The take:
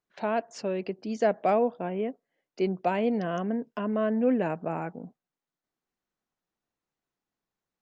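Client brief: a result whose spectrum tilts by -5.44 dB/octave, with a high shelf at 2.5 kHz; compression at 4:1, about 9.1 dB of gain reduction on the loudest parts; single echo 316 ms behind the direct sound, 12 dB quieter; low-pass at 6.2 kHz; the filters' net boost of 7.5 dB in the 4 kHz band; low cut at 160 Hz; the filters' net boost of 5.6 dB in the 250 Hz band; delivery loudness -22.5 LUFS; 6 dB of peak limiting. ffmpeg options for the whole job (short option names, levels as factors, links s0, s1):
-af "highpass=160,lowpass=6200,equalizer=f=250:t=o:g=7.5,highshelf=f=2500:g=4,equalizer=f=4000:t=o:g=8,acompressor=threshold=0.0501:ratio=4,alimiter=limit=0.075:level=0:latency=1,aecho=1:1:316:0.251,volume=2.99"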